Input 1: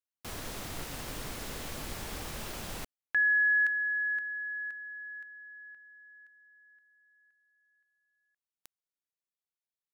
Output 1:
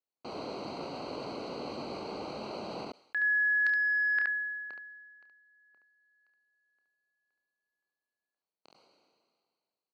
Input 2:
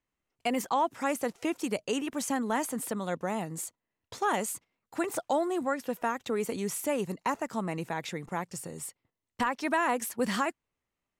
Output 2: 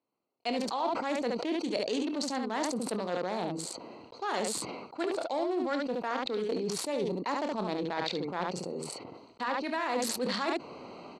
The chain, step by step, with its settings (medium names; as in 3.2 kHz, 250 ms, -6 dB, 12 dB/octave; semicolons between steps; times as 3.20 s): local Wiener filter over 25 samples; high-pass 290 Hz 12 dB/octave; reverse; compression 6:1, threshold -38 dBFS; reverse; low-pass 5.9 kHz 12 dB/octave; peaking EQ 4.3 kHz +14.5 dB 0.43 oct; on a send: early reflections 28 ms -13 dB, 71 ms -6.5 dB; on the sum: decay stretcher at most 30 dB/s; trim +7.5 dB